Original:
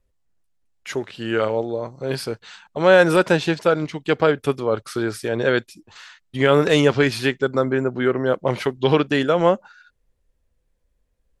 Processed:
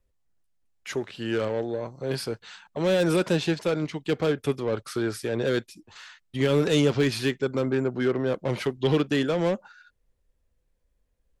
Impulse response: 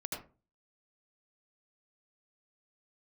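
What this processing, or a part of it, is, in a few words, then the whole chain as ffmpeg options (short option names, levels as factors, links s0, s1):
one-band saturation: -filter_complex "[0:a]acrossover=split=430|3000[s0][s1][s2];[s1]asoftclip=type=tanh:threshold=0.0501[s3];[s0][s3][s2]amix=inputs=3:normalize=0,volume=0.708"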